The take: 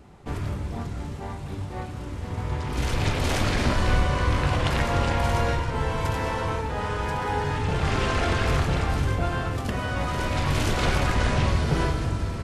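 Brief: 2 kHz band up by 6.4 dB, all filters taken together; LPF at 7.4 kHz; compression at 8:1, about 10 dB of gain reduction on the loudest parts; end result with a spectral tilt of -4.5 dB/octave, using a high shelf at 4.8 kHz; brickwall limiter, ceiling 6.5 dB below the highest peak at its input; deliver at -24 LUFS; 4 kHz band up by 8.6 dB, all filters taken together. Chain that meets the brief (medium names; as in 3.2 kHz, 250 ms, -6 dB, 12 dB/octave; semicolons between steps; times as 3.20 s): low-pass 7.4 kHz; peaking EQ 2 kHz +5.5 dB; peaking EQ 4 kHz +6 dB; treble shelf 4.8 kHz +7.5 dB; compression 8:1, threshold -27 dBFS; trim +8 dB; peak limiter -14 dBFS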